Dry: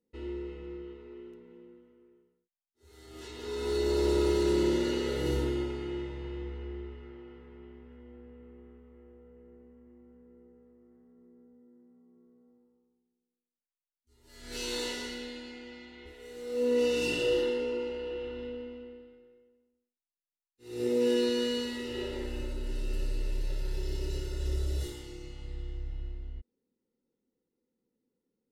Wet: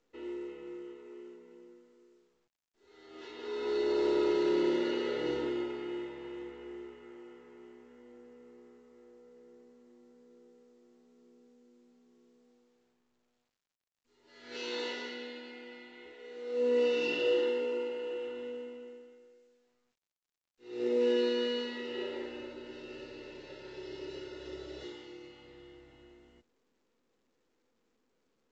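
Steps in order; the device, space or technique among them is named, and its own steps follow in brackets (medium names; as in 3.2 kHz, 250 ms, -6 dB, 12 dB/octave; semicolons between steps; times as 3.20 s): telephone (band-pass 300–3400 Hz; µ-law 128 kbps 16 kHz)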